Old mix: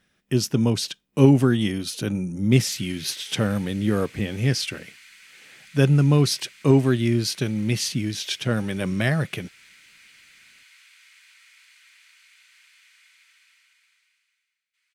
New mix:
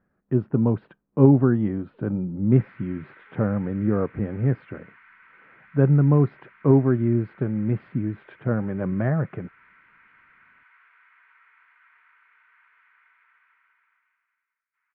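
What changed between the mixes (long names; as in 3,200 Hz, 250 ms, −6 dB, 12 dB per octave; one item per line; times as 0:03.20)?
background +11.0 dB
master: add inverse Chebyshev low-pass filter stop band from 5,800 Hz, stop band 70 dB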